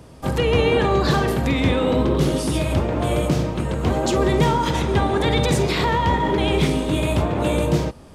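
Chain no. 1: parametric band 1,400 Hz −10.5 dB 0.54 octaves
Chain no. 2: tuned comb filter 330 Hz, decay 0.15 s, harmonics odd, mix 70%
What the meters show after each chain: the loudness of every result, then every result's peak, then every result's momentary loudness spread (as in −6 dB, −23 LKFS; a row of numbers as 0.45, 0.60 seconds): −20.5, −29.0 LKFS; −6.0, −14.0 dBFS; 4, 4 LU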